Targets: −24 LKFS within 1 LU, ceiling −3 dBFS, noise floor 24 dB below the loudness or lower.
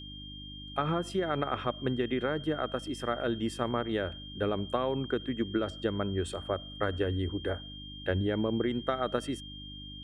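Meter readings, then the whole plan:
mains hum 50 Hz; hum harmonics up to 300 Hz; level of the hum −45 dBFS; interfering tone 3,200 Hz; level of the tone −45 dBFS; integrated loudness −32.5 LKFS; sample peak −14.0 dBFS; target loudness −24.0 LKFS
→ hum removal 50 Hz, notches 6
notch filter 3,200 Hz, Q 30
level +8.5 dB

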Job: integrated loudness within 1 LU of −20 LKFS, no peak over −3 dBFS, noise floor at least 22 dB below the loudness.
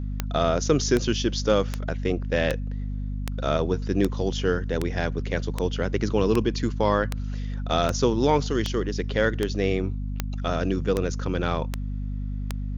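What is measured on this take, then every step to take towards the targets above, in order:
number of clicks 17; mains hum 50 Hz; hum harmonics up to 250 Hz; level of the hum −27 dBFS; integrated loudness −26.0 LKFS; sample peak −6.0 dBFS; target loudness −20.0 LKFS
→ click removal
hum removal 50 Hz, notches 5
level +6 dB
brickwall limiter −3 dBFS

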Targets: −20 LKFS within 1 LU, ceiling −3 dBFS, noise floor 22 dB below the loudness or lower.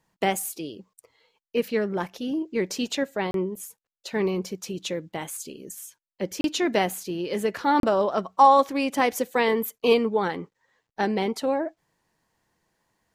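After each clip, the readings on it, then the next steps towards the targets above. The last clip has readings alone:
number of dropouts 3; longest dropout 32 ms; integrated loudness −25.0 LKFS; sample peak −5.5 dBFS; target loudness −20.0 LKFS
→ repair the gap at 0:03.31/0:06.41/0:07.80, 32 ms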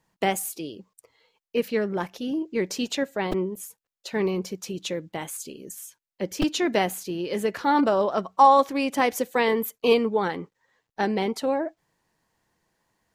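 number of dropouts 0; integrated loudness −25.0 LKFS; sample peak −5.5 dBFS; target loudness −20.0 LKFS
→ level +5 dB
brickwall limiter −3 dBFS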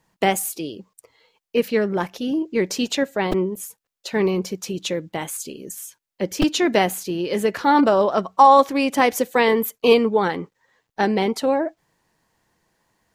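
integrated loudness −20.5 LKFS; sample peak −3.0 dBFS; background noise floor −80 dBFS

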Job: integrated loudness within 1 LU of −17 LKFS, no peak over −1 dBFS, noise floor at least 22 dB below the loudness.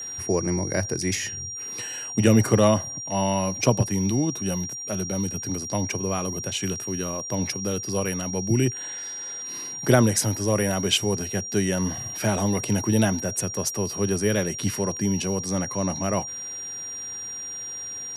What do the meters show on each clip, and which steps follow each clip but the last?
crackle rate 23 per second; interfering tone 5,700 Hz; level of the tone −32 dBFS; integrated loudness −25.0 LKFS; sample peak −4.5 dBFS; target loudness −17.0 LKFS
→ click removal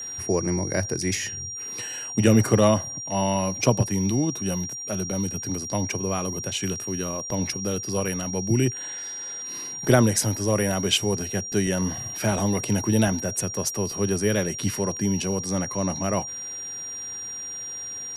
crackle rate 0 per second; interfering tone 5,700 Hz; level of the tone −32 dBFS
→ notch filter 5,700 Hz, Q 30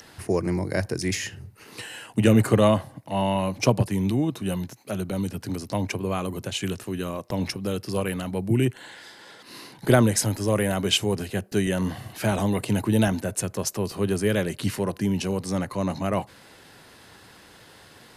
interfering tone none found; integrated loudness −25.5 LKFS; sample peak −5.0 dBFS; target loudness −17.0 LKFS
→ level +8.5 dB
brickwall limiter −1 dBFS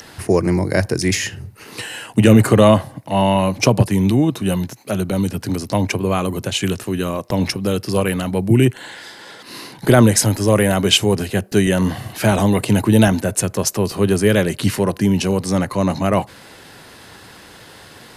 integrated loudness −17.0 LKFS; sample peak −1.0 dBFS; background noise floor −42 dBFS

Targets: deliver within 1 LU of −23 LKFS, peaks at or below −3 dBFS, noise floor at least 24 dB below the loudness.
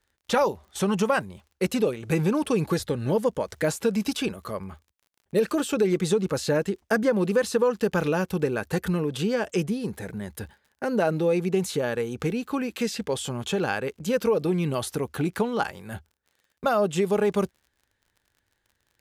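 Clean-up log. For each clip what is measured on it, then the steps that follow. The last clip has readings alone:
crackle rate 46 per second; integrated loudness −26.0 LKFS; sample peak −10.5 dBFS; target loudness −23.0 LKFS
→ click removal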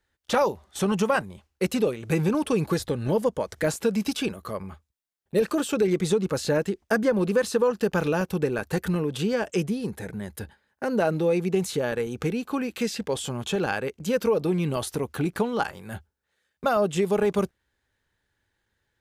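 crackle rate 0 per second; integrated loudness −26.0 LKFS; sample peak −10.5 dBFS; target loudness −23.0 LKFS
→ level +3 dB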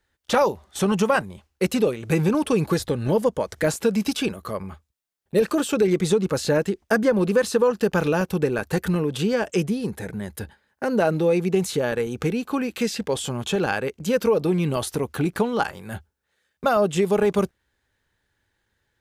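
integrated loudness −23.0 LKFS; sample peak −7.5 dBFS; background noise floor −75 dBFS

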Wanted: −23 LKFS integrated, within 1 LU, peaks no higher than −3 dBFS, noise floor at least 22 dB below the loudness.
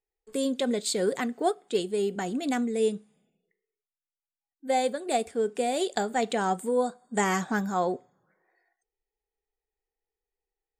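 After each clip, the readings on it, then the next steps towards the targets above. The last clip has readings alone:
integrated loudness −28.5 LKFS; sample peak −13.0 dBFS; target loudness −23.0 LKFS
→ level +5.5 dB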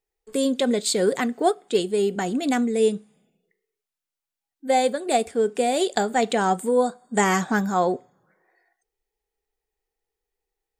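integrated loudness −23.0 LKFS; sample peak −7.5 dBFS; background noise floor −88 dBFS

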